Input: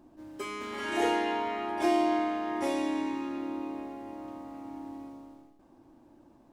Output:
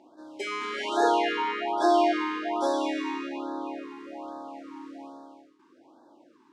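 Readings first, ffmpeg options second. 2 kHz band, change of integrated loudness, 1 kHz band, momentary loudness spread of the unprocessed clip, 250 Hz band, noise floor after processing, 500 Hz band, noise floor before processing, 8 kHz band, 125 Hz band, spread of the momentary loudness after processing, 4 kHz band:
+4.0 dB, +4.5 dB, +5.5 dB, 16 LU, +0.5 dB, -60 dBFS, +4.5 dB, -60 dBFS, +2.5 dB, n/a, 19 LU, +5.5 dB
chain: -af "highpass=450,lowpass=5.9k,afftfilt=real='re*(1-between(b*sr/1024,600*pow(2500/600,0.5+0.5*sin(2*PI*1.2*pts/sr))/1.41,600*pow(2500/600,0.5+0.5*sin(2*PI*1.2*pts/sr))*1.41))':imag='im*(1-between(b*sr/1024,600*pow(2500/600,0.5+0.5*sin(2*PI*1.2*pts/sr))/1.41,600*pow(2500/600,0.5+0.5*sin(2*PI*1.2*pts/sr))*1.41))':win_size=1024:overlap=0.75,volume=7.5dB"

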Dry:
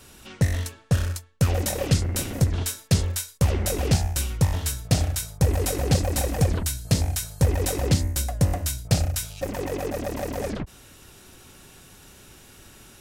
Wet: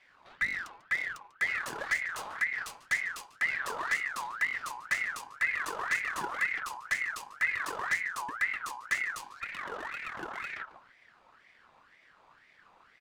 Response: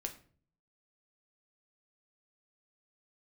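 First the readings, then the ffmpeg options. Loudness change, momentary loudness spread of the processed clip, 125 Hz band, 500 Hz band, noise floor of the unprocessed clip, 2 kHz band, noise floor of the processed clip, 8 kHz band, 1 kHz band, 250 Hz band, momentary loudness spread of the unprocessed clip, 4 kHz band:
-7.5 dB, 8 LU, under -35 dB, -18.0 dB, -50 dBFS, +9.0 dB, -63 dBFS, -16.0 dB, -1.5 dB, -24.5 dB, 7 LU, -12.0 dB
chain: -filter_complex "[0:a]adynamicsmooth=sensitivity=6.5:basefreq=1.9k,asplit=2[a][b];[b]adelay=145,lowpass=f=3.3k:p=1,volume=-14dB,asplit=2[c][d];[d]adelay=145,lowpass=f=3.3k:p=1,volume=0.29,asplit=2[e][f];[f]adelay=145,lowpass=f=3.3k:p=1,volume=0.29[g];[a][c][e][g]amix=inputs=4:normalize=0,aeval=exprs='val(0)*sin(2*PI*1500*n/s+1500*0.4/2*sin(2*PI*2*n/s))':c=same,volume=-7.5dB"

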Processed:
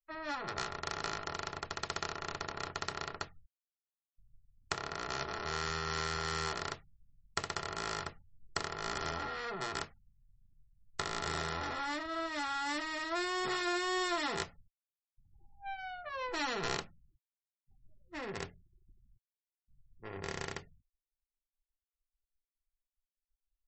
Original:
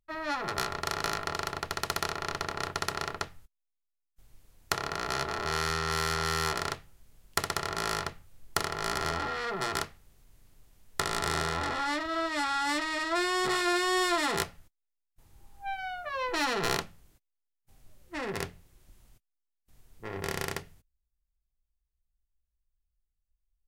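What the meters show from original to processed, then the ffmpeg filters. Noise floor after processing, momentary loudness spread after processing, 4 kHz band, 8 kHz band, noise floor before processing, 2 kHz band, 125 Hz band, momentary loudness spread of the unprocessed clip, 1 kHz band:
under -85 dBFS, 10 LU, -6.0 dB, -8.0 dB, -83 dBFS, -6.5 dB, -6.5 dB, 10 LU, -6.5 dB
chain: -af "afftfilt=real='re*gte(hypot(re,im),0.002)':imag='im*gte(hypot(re,im),0.002)':win_size=1024:overlap=0.75,volume=-6dB" -ar 32000 -c:a libmp3lame -b:a 32k

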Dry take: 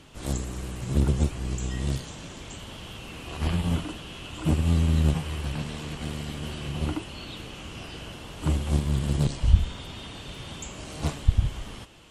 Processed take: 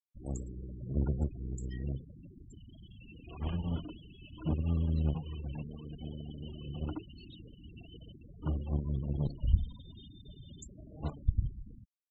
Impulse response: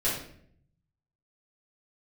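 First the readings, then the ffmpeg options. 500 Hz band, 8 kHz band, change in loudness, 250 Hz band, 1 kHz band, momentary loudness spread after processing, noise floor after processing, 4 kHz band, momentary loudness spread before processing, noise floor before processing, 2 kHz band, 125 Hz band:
-9.5 dB, under -15 dB, -8.0 dB, -8.5 dB, -13.5 dB, 20 LU, -56 dBFS, -17.5 dB, 16 LU, -42 dBFS, -20.0 dB, -8.5 dB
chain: -af "afftfilt=real='re*gte(hypot(re,im),0.0316)':imag='im*gte(hypot(re,im),0.0316)':win_size=1024:overlap=0.75,volume=-8.5dB"

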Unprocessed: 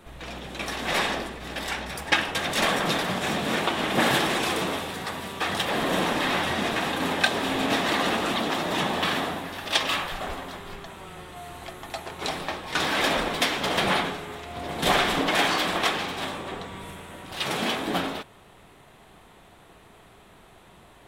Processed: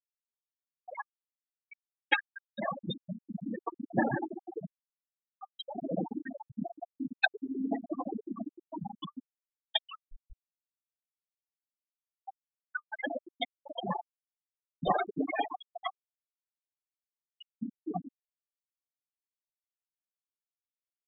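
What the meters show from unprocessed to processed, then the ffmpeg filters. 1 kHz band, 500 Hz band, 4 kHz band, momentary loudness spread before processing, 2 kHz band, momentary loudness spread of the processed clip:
-11.5 dB, -11.5 dB, -16.0 dB, 15 LU, -12.0 dB, 18 LU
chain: -af "afftfilt=real='re*gte(hypot(re,im),0.282)':imag='im*gte(hypot(re,im),0.282)':win_size=1024:overlap=0.75,bandreject=f=1.2k:w=27,volume=-1.5dB"

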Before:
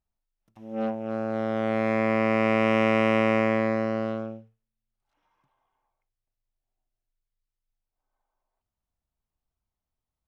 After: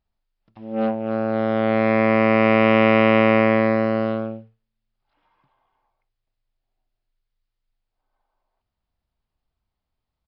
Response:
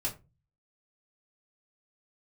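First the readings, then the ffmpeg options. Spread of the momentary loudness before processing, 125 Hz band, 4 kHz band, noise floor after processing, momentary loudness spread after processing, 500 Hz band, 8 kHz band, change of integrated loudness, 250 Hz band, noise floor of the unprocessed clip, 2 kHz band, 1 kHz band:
10 LU, +6.5 dB, +6.5 dB, -82 dBFS, 10 LU, +6.5 dB, n/a, +6.5 dB, +6.5 dB, under -85 dBFS, +6.5 dB, +6.5 dB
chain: -af "aresample=11025,aresample=44100,volume=6.5dB"

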